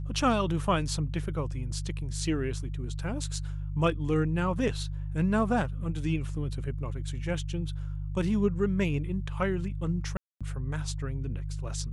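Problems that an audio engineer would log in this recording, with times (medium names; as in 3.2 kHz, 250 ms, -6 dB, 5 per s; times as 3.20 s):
hum 50 Hz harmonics 3 -34 dBFS
10.17–10.41 s: dropout 236 ms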